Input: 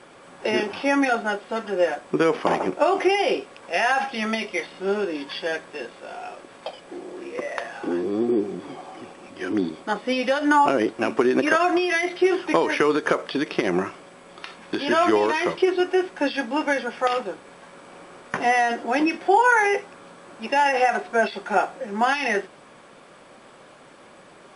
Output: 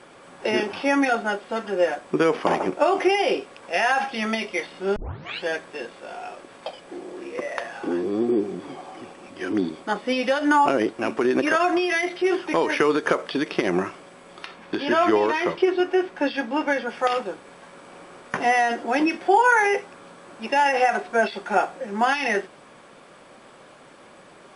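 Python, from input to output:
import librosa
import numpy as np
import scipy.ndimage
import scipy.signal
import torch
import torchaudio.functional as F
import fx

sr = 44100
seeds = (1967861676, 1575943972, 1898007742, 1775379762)

y = fx.transient(x, sr, attack_db=-5, sustain_db=-1, at=(10.5, 12.75))
y = fx.high_shelf(y, sr, hz=6500.0, db=-10.5, at=(14.46, 16.89))
y = fx.edit(y, sr, fx.tape_start(start_s=4.96, length_s=0.48), tone=tone)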